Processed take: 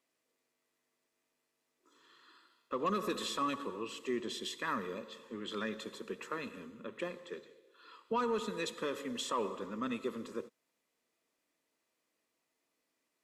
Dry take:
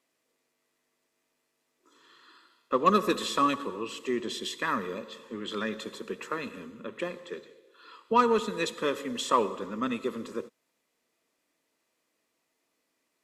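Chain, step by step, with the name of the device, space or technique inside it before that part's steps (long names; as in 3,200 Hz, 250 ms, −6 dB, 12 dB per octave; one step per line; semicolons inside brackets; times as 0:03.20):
soft clipper into limiter (soft clipping −12.5 dBFS, distortion −22 dB; brickwall limiter −20 dBFS, peak gain reduction 6.5 dB)
level −5.5 dB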